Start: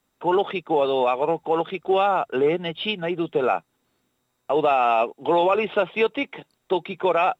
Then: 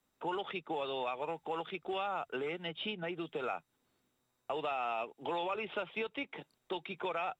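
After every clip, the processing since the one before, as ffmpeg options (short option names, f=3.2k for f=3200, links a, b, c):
-filter_complex "[0:a]acrossover=split=120|1200|4400[a][b][c][d];[a]acompressor=threshold=-56dB:ratio=4[e];[b]acompressor=threshold=-32dB:ratio=4[f];[c]acompressor=threshold=-32dB:ratio=4[g];[d]acompressor=threshold=-57dB:ratio=4[h];[e][f][g][h]amix=inputs=4:normalize=0,volume=-7dB"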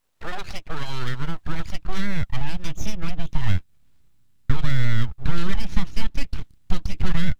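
-af "aeval=exprs='abs(val(0))':c=same,asubboost=boost=11.5:cutoff=170,volume=7.5dB"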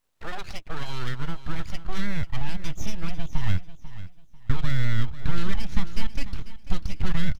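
-af "aecho=1:1:493|986|1479:0.188|0.0527|0.0148,volume=-3dB"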